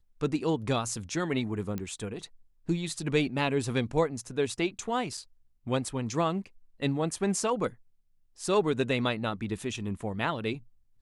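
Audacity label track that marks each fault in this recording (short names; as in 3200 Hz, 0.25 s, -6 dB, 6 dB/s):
1.780000	1.780000	pop -21 dBFS
5.170000	5.170000	gap 4.6 ms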